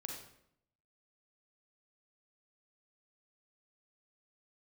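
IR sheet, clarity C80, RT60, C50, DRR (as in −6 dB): 6.0 dB, 0.70 s, 2.5 dB, 0.5 dB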